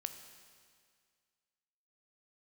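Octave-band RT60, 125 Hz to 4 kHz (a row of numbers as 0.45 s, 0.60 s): 2.0 s, 2.0 s, 2.0 s, 2.0 s, 2.0 s, 2.0 s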